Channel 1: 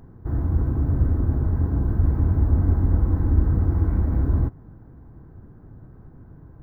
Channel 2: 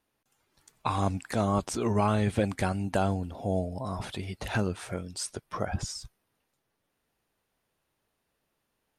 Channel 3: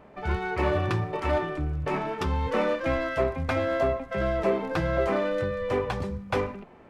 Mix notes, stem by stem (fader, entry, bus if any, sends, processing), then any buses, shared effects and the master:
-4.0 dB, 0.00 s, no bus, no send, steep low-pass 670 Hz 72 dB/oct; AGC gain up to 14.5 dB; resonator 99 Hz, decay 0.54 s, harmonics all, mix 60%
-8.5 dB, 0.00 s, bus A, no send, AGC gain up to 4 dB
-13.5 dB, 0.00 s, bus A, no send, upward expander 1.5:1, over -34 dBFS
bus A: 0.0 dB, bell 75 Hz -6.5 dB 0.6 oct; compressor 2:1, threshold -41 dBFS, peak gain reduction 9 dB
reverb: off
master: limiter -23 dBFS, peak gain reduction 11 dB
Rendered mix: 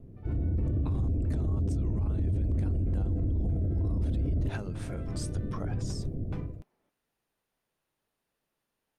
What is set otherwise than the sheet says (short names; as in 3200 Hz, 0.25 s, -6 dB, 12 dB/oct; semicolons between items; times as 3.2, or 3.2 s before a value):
stem 1 -4.0 dB -> +3.5 dB; stem 3 -13.5 dB -> -19.5 dB